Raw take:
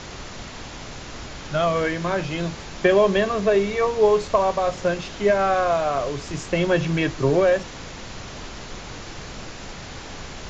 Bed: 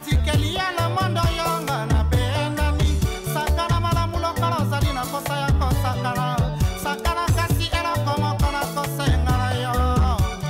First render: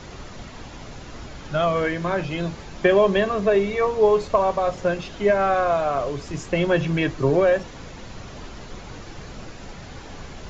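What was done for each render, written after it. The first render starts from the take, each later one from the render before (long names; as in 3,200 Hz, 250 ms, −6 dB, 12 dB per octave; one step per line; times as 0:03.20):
broadband denoise 7 dB, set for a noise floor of −37 dBFS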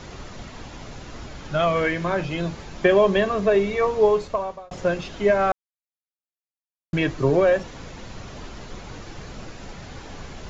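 0:01.59–0:02.04: parametric band 2,300 Hz +4.5 dB
0:04.02–0:04.71: fade out
0:05.52–0:06.93: silence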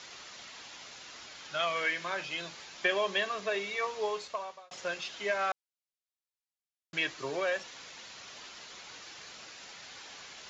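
resonant band-pass 4,600 Hz, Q 0.62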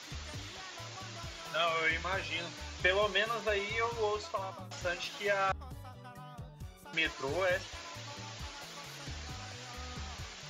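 mix in bed −26 dB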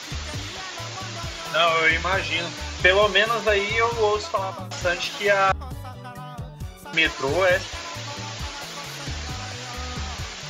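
level +12 dB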